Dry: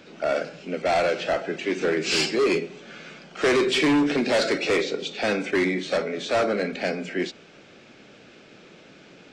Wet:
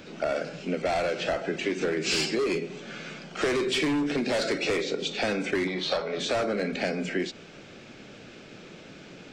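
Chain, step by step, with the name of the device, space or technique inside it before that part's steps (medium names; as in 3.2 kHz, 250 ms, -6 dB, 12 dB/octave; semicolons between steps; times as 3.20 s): 5.67–6.20 s: graphic EQ 250/1000/2000/4000/8000 Hz -9/+9/-6/+9/-11 dB; ASMR close-microphone chain (bass shelf 150 Hz +8 dB; compression, threshold -26 dBFS, peak gain reduction 10 dB; treble shelf 8.8 kHz +6.5 dB); trim +1.5 dB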